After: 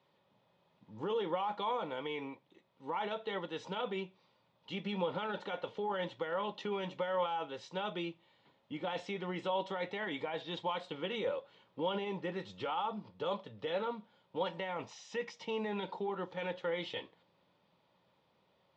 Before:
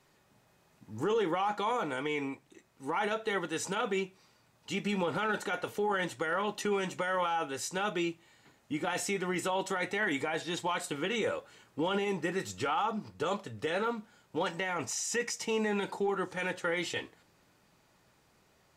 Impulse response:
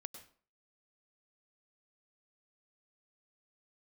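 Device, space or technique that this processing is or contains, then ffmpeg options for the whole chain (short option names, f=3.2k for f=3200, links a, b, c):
guitar cabinet: -af "highpass=87,equalizer=f=180:t=q:w=4:g=5,equalizer=f=540:t=q:w=4:g=9,equalizer=f=950:t=q:w=4:g=7,equalizer=f=1.6k:t=q:w=4:g=-4,equalizer=f=3.4k:t=q:w=4:g=8,lowpass=f=4.4k:w=0.5412,lowpass=f=4.4k:w=1.3066,volume=-8.5dB"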